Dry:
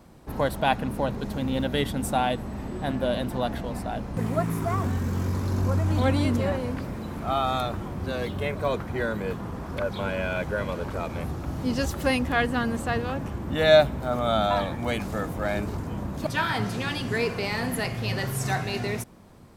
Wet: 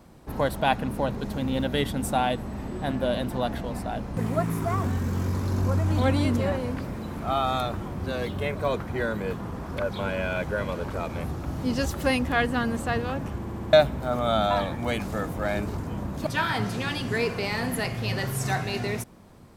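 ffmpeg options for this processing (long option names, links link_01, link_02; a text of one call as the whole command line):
ffmpeg -i in.wav -filter_complex "[0:a]asplit=6[link_01][link_02][link_03][link_04][link_05][link_06];[link_01]atrim=end=13.452[link_07];[link_02]atrim=start=13.378:end=13.452[link_08];[link_03]atrim=start=13.378:end=13.452[link_09];[link_04]atrim=start=13.378:end=13.452[link_10];[link_05]atrim=start=13.378:end=13.452[link_11];[link_06]atrim=start=13.728[link_12];[link_07][link_08]acrossfade=duration=0.004:curve1=hsin:curve2=hsin[link_13];[link_13][link_09]acrossfade=duration=0.004:curve1=hsin:curve2=hsin[link_14];[link_14][link_10]acrossfade=duration=0.004:curve1=hsin:curve2=hsin[link_15];[link_15][link_11]acrossfade=duration=0.004:curve1=hsin:curve2=hsin[link_16];[link_16][link_12]acrossfade=duration=0.004:curve1=hsin:curve2=hsin" out.wav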